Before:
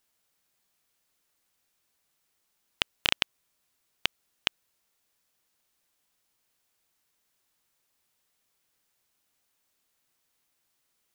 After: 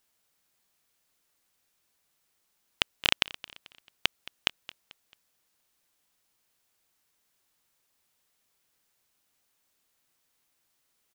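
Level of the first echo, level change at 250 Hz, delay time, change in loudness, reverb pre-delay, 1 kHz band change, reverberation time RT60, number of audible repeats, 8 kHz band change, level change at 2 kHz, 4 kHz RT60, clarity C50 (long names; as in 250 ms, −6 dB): −18.5 dB, +1.0 dB, 220 ms, +1.0 dB, no reverb audible, +1.0 dB, no reverb audible, 3, +1.0 dB, +1.0 dB, no reverb audible, no reverb audible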